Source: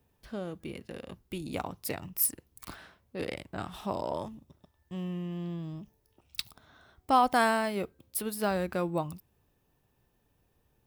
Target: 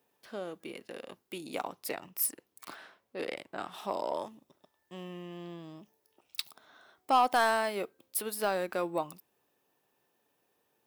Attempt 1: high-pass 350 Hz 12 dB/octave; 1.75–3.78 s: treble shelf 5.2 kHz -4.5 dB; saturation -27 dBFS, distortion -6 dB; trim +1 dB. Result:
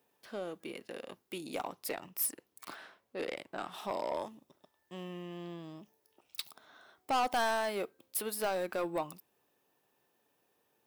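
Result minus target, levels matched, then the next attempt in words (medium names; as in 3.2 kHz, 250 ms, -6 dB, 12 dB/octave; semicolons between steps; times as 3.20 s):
saturation: distortion +10 dB
high-pass 350 Hz 12 dB/octave; 1.75–3.78 s: treble shelf 5.2 kHz -4.5 dB; saturation -16.5 dBFS, distortion -17 dB; trim +1 dB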